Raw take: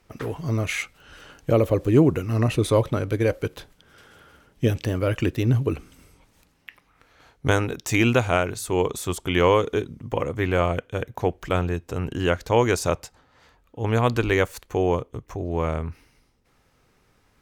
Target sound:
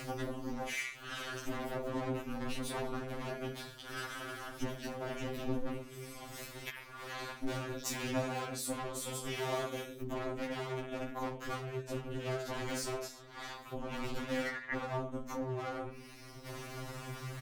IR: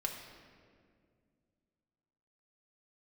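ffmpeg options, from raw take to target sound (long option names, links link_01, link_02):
-filter_complex "[0:a]aecho=1:1:20|43|69.45|99.87|134.8:0.631|0.398|0.251|0.158|0.1,aeval=exprs='val(0)*sin(2*PI*130*n/s)':channel_layout=same,asettb=1/sr,asplit=3[link_01][link_02][link_03];[link_01]atrim=end=9.404[link_04];[link_02]atrim=start=9.4:end=10.02,asetpts=PTS-STARTPTS,afade=type=in:duration=0.004:curve=qsin,afade=type=out:start_time=0.616:duration=0.004:curve=qsin,aemphasis=mode=production:type=bsi[link_05];[link_03]atrim=start=10.016[link_06];[link_04][link_05]acrossfade=duration=0.004:curve1=hsin:curve2=qsin[link_07];[link_07][link_06]acrossfade=duration=0.004:curve1=qsin:curve2=hsin,asettb=1/sr,asplit=3[link_08][link_09][link_10];[link_08]atrim=end=14.464[link_11];[link_09]atrim=start=14.46:end=14.87,asetpts=PTS-STARTPTS,afade=type=in:duration=0.004:curve=qsin,afade=type=out:start_time=0.406:duration=0.004:curve=qsin,lowpass=frequency=1900:width_type=q:width=10[link_12];[link_10]atrim=start=14.866[link_13];[link_11][link_12]acrossfade=duration=0.004:curve1=hsin:curve2=qsin[link_14];[link_14][link_13]acrossfade=duration=0.004:curve1=qsin:curve2=hsin,acompressor=mode=upward:threshold=-30dB:ratio=2.5,asettb=1/sr,asplit=3[link_15][link_16][link_17];[link_15]atrim=end=7.924[link_18];[link_16]atrim=start=7.92:end=8.75,asetpts=PTS-STARTPTS,afade=type=in:duration=0.004:curve=qsin,afade=type=out:start_time=0.826:duration=0.004:curve=qsin,highpass=49[link_19];[link_17]atrim=start=8.746[link_20];[link_18][link_19]acrossfade=duration=0.004:curve1=hsin:curve2=qsin[link_21];[link_21][link_20]acrossfade=duration=0.004:curve1=qsin:curve2=hsin,asoftclip=type=hard:threshold=-25.5dB,bandreject=frequency=50:width_type=h:width=6,bandreject=frequency=100:width_type=h:width=6,bandreject=frequency=150:width_type=h:width=6,bandreject=frequency=200:width_type=h:width=6,bandreject=frequency=250:width_type=h:width=6,acompressor=threshold=-37dB:ratio=6,afftfilt=real='re*2.45*eq(mod(b,6),0)':imag='im*2.45*eq(mod(b,6),0)':win_size=2048:overlap=0.75,volume=4dB"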